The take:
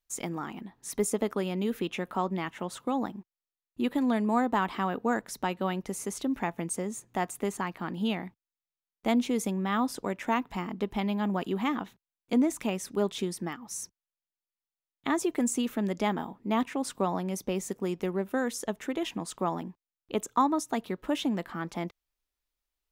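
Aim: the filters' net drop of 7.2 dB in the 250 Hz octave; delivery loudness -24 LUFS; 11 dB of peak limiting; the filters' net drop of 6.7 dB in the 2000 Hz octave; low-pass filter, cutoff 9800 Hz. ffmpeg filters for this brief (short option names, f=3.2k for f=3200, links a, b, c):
-af "lowpass=9.8k,equalizer=f=250:t=o:g=-9,equalizer=f=2k:t=o:g=-8.5,volume=14.5dB,alimiter=limit=-12.5dB:level=0:latency=1"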